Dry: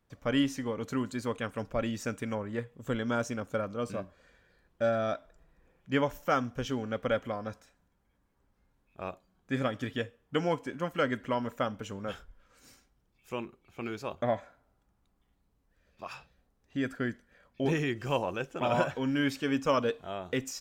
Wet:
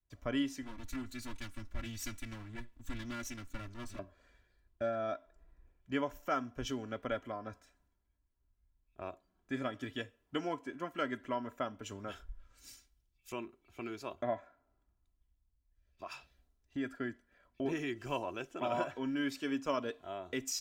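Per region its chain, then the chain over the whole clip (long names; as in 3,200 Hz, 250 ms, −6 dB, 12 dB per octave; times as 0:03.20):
0:00.62–0:03.99: lower of the sound and its delayed copy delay 3.5 ms + parametric band 560 Hz −12.5 dB 1.5 octaves
whole clip: comb filter 3 ms, depth 52%; downward compressor 2 to 1, threshold −50 dBFS; multiband upward and downward expander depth 70%; level +4.5 dB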